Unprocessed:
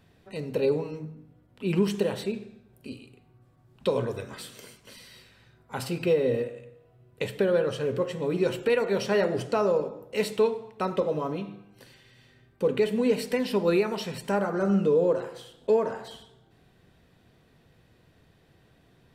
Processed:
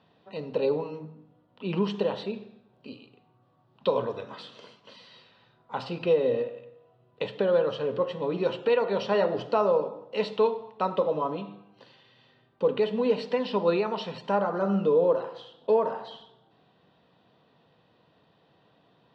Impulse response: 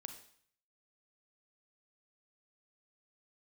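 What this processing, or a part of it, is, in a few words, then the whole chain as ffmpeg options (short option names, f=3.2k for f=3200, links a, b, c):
kitchen radio: -af "highpass=220,equalizer=f=250:t=q:w=4:g=-4,equalizer=f=370:t=q:w=4:g=-7,equalizer=f=980:t=q:w=4:g=4,equalizer=f=1.6k:t=q:w=4:g=-6,equalizer=f=2.2k:t=q:w=4:g=-10,lowpass=f=4k:w=0.5412,lowpass=f=4k:w=1.3066,volume=2.5dB"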